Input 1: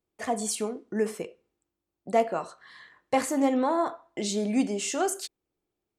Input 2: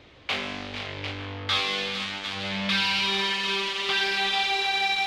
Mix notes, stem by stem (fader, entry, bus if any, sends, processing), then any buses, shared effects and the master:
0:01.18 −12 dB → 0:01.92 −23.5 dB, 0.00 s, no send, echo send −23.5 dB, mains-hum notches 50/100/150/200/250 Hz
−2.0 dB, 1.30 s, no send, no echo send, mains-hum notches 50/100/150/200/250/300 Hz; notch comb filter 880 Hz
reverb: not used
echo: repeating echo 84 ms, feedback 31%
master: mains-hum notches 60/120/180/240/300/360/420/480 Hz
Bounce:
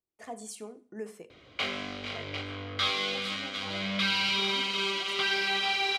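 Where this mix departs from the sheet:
stem 2: missing mains-hum notches 50/100/150/200/250/300 Hz
master: missing mains-hum notches 60/120/180/240/300/360/420/480 Hz

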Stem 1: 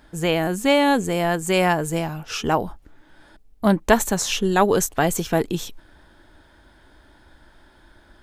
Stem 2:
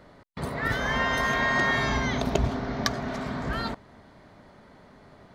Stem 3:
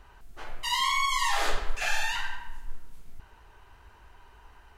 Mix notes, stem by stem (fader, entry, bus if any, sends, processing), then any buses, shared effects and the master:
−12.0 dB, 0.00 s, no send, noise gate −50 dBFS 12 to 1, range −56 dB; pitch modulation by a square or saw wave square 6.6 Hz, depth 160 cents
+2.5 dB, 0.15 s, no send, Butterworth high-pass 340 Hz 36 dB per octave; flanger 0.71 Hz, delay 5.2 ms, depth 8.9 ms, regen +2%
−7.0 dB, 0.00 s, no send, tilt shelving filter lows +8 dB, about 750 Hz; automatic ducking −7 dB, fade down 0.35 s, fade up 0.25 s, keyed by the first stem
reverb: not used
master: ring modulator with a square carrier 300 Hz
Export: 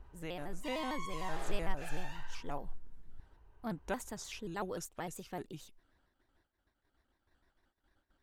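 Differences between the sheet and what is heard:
stem 1 −12.0 dB → −22.0 dB
stem 2: muted
master: missing ring modulator with a square carrier 300 Hz

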